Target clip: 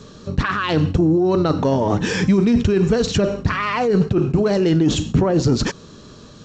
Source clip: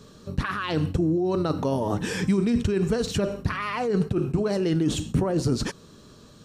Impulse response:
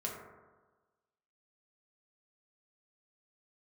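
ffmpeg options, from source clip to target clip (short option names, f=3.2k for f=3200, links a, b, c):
-af "asoftclip=type=tanh:threshold=-13.5dB,volume=8dB" -ar 16000 -c:a g722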